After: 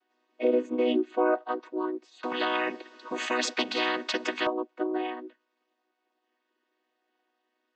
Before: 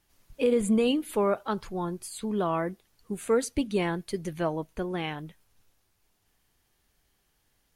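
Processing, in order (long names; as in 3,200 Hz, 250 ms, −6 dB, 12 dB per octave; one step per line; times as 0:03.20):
channel vocoder with a chord as carrier major triad, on B3
band-pass filter 460–3,700 Hz
0:02.23–0:04.47: every bin compressed towards the loudest bin 4 to 1
level +6 dB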